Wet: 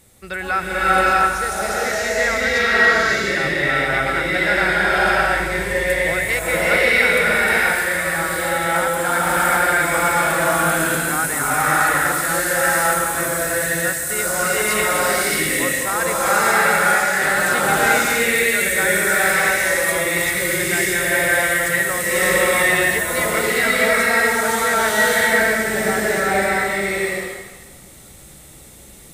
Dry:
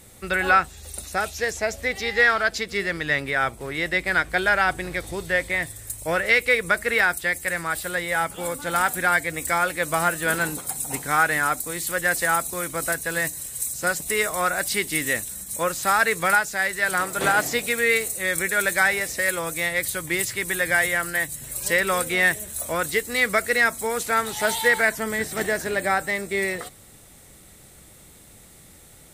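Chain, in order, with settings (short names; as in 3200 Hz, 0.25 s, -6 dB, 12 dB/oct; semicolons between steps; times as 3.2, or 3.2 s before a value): bloom reverb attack 0.63 s, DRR -9.5 dB; gain -4 dB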